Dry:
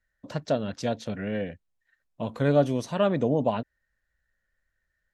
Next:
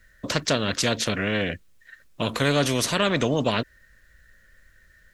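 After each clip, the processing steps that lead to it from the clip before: bell 820 Hz -14 dB 0.44 oct; spectral compressor 2:1; gain +4.5 dB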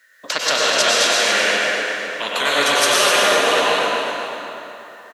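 HPF 710 Hz 12 dB/oct; feedback echo 0.251 s, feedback 46%, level -7.5 dB; plate-style reverb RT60 3 s, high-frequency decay 0.6×, pre-delay 85 ms, DRR -5.5 dB; gain +5 dB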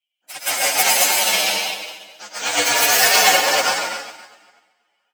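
inharmonic rescaling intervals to 125%; tilt shelf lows -3.5 dB, about 630 Hz; upward expander 2.5:1, over -38 dBFS; gain +5.5 dB

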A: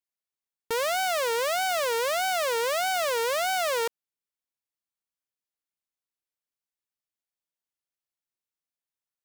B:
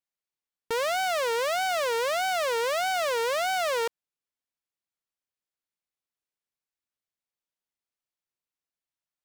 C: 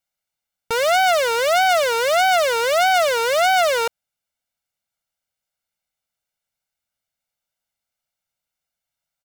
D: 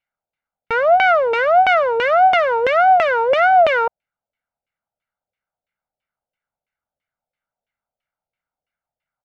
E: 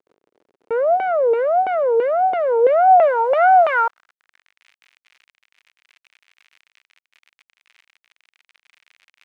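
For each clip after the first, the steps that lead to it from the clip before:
high shelf 8000 Hz -7.5 dB
comb 1.4 ms, depth 67%; gain +7 dB
LFO low-pass saw down 3 Hz 530–2600 Hz
bit-crush 6-bit; crackle 61/s -31 dBFS; band-pass sweep 410 Hz -> 2300 Hz, 2.48–4.64; gain +5 dB

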